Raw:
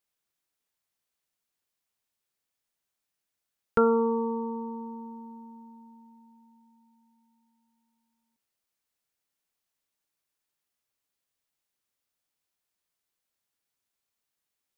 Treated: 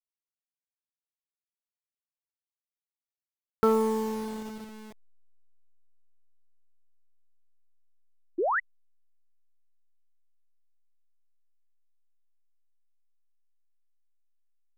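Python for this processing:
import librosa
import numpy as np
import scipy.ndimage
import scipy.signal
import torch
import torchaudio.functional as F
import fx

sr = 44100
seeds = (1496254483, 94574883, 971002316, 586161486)

y = fx.delta_hold(x, sr, step_db=-34.5)
y = fx.doppler_pass(y, sr, speed_mps=24, closest_m=29.0, pass_at_s=3.01)
y = fx.spec_paint(y, sr, seeds[0], shape='rise', start_s=8.38, length_s=0.22, low_hz=310.0, high_hz=2100.0, level_db=-26.0)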